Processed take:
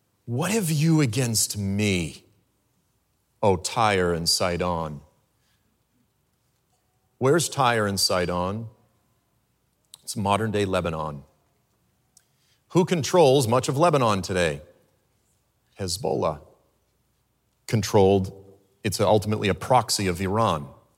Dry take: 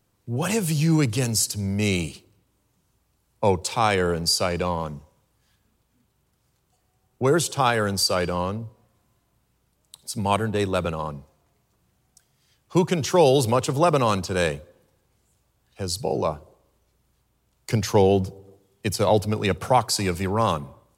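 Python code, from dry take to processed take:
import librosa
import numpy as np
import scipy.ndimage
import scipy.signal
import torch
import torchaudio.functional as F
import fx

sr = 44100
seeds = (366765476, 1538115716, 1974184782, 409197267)

y = scipy.signal.sosfilt(scipy.signal.butter(2, 71.0, 'highpass', fs=sr, output='sos'), x)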